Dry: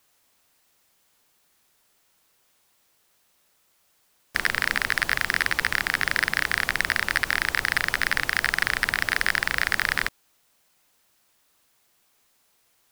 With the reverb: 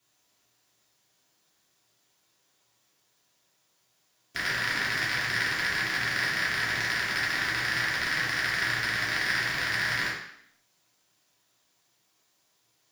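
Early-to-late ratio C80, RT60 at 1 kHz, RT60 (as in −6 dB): 5.5 dB, 0.70 s, 0.70 s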